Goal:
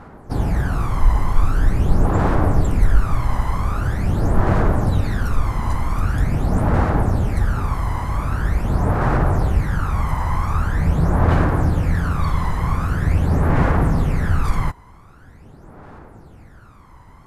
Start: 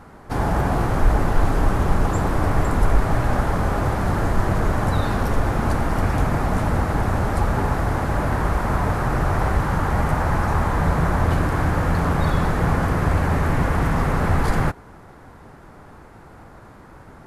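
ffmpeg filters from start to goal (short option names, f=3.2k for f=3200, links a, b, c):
-af "aphaser=in_gain=1:out_gain=1:delay=1:decay=0.65:speed=0.44:type=sinusoidal,volume=-5dB"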